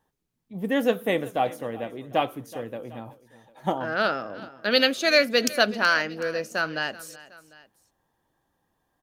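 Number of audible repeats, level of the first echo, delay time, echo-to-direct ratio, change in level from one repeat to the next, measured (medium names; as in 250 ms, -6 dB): 2, -19.0 dB, 375 ms, -17.5 dB, -4.5 dB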